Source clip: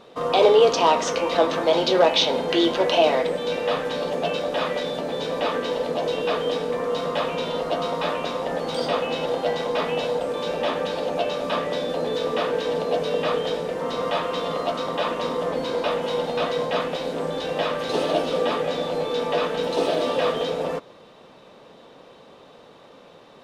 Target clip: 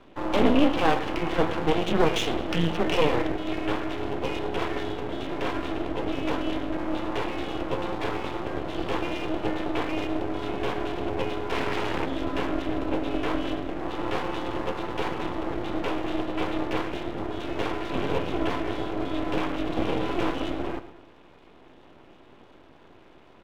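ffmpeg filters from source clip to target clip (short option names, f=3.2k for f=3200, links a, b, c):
-filter_complex "[0:a]asplit=3[a][b][c];[a]afade=t=out:st=11.51:d=0.02[d];[b]aeval=exprs='0.224*(cos(1*acos(clip(val(0)/0.224,-1,1)))-cos(1*PI/2))+0.0708*(cos(8*acos(clip(val(0)/0.224,-1,1)))-cos(8*PI/2))':c=same,afade=t=in:st=11.51:d=0.02,afade=t=out:st=12.04:d=0.02[e];[c]afade=t=in:st=12.04:d=0.02[f];[d][e][f]amix=inputs=3:normalize=0,highpass=f=270:t=q:w=0.5412,highpass=f=270:t=q:w=1.307,lowpass=f=3.3k:t=q:w=0.5176,lowpass=f=3.3k:t=q:w=0.7071,lowpass=f=3.3k:t=q:w=1.932,afreqshift=-170,aecho=1:1:108|216|324|432:0.211|0.0867|0.0355|0.0146,aeval=exprs='max(val(0),0)':c=same"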